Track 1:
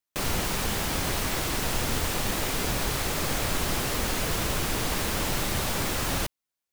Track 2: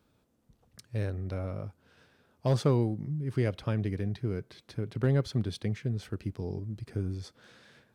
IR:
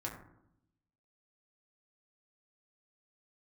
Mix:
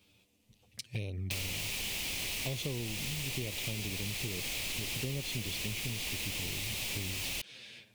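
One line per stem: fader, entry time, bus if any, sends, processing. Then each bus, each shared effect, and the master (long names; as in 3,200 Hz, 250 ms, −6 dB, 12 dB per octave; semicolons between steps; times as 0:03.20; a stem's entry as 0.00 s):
−7.5 dB, 1.15 s, no send, no processing
+2.5 dB, 0.00 s, no send, flanger swept by the level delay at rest 10.6 ms, full sweep at −27.5 dBFS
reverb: not used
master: high shelf with overshoot 1,900 Hz +9 dB, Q 3; downward compressor 12 to 1, threshold −33 dBFS, peak gain reduction 15.5 dB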